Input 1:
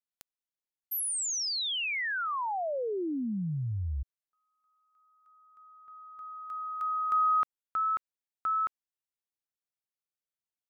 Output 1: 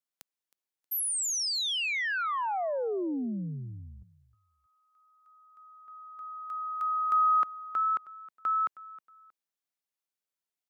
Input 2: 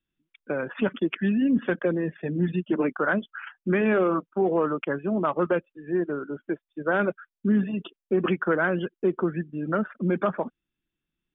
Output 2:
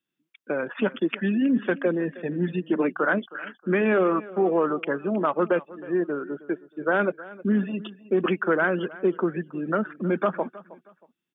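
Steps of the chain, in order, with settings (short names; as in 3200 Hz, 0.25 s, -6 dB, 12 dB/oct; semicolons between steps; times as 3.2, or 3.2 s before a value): HPF 190 Hz 12 dB/oct; feedback echo 0.316 s, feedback 29%, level -19 dB; gain +1.5 dB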